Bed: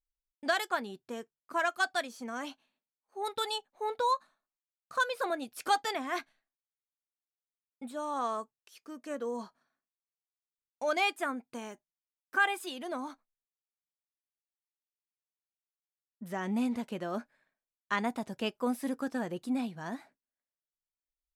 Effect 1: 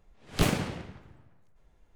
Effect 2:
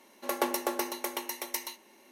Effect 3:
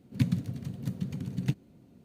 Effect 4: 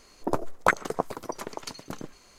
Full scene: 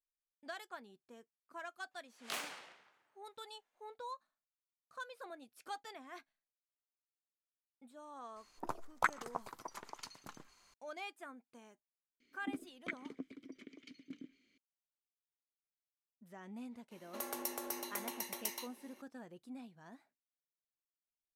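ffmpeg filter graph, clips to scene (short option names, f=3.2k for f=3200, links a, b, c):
-filter_complex "[4:a]asplit=2[a][b];[0:a]volume=-17dB[c];[1:a]highpass=920[d];[a]lowshelf=f=710:t=q:w=1.5:g=-6.5[e];[b]asplit=3[f][g][h];[f]bandpass=f=270:t=q:w=8,volume=0dB[i];[g]bandpass=f=2.29k:t=q:w=8,volume=-6dB[j];[h]bandpass=f=3.01k:t=q:w=8,volume=-9dB[k];[i][j][k]amix=inputs=3:normalize=0[l];[2:a]acrossover=split=130|5700[m][n][o];[n]acompressor=threshold=-37dB:ratio=5:attack=2.5:release=96:knee=2.83:detection=peak[p];[m][p][o]amix=inputs=3:normalize=0[q];[d]atrim=end=1.95,asetpts=PTS-STARTPTS,volume=-9.5dB,afade=t=in:d=0.004:c=hsin,afade=t=out:st=1.946:d=0.004:c=hsin,adelay=1910[r];[e]atrim=end=2.38,asetpts=PTS-STARTPTS,volume=-11dB,afade=t=in:d=0.004:c=hsin,afade=t=out:st=2.376:d=0.004:c=hsin,adelay=8360[s];[l]atrim=end=2.38,asetpts=PTS-STARTPTS,volume=-3dB,afade=t=in:d=0.004:c=hsin,afade=t=out:st=2.376:d=0.004:c=hsin,adelay=538020S[t];[q]atrim=end=2.11,asetpts=PTS-STARTPTS,volume=-4.5dB,afade=t=in:d=0.004:c=hsin,afade=t=out:st=2.106:d=0.004:c=hsin,adelay=16910[u];[c][r][s][t][u]amix=inputs=5:normalize=0"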